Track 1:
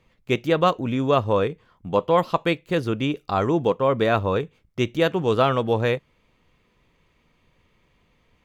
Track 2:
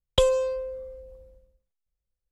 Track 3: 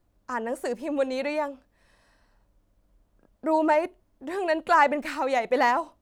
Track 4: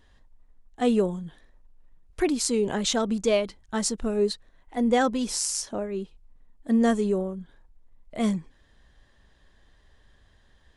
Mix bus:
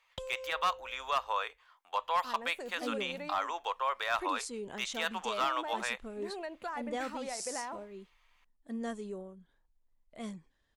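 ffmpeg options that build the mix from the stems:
ffmpeg -i stem1.wav -i stem2.wav -i stem3.wav -i stem4.wav -filter_complex "[0:a]highpass=frequency=850:width=0.5412,highpass=frequency=850:width=1.3066,asoftclip=type=hard:threshold=-17.5dB,volume=-2dB[link_01];[1:a]acompressor=threshold=-28dB:ratio=6,volume=-11.5dB[link_02];[2:a]acompressor=threshold=-24dB:ratio=6,adelay=1950,volume=-12.5dB[link_03];[3:a]lowshelf=frequency=460:gain=-5.5,adelay=2000,volume=-13dB[link_04];[link_01][link_02][link_03][link_04]amix=inputs=4:normalize=0,alimiter=limit=-22.5dB:level=0:latency=1:release=97" out.wav

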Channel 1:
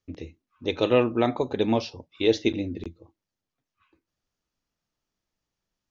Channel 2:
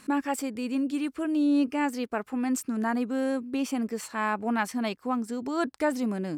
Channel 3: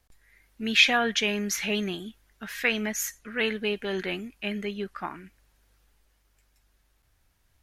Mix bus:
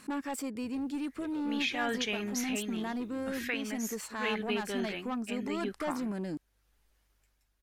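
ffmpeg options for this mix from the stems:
ffmpeg -i stem1.wav -i stem2.wav -i stem3.wav -filter_complex "[0:a]acompressor=threshold=-25dB:ratio=6,asoftclip=type=tanh:threshold=-27dB,acrusher=bits=9:mix=0:aa=0.000001,adelay=550,volume=-13.5dB[link_01];[1:a]asoftclip=type=tanh:threshold=-26dB,volume=-1.5dB[link_02];[2:a]tremolo=f=0.81:d=0.52,adelay=850,volume=-4dB[link_03];[link_01][link_02]amix=inputs=2:normalize=0,alimiter=level_in=6dB:limit=-24dB:level=0:latency=1:release=322,volume=-6dB,volume=0dB[link_04];[link_03][link_04]amix=inputs=2:normalize=0,alimiter=limit=-21dB:level=0:latency=1:release=323" out.wav

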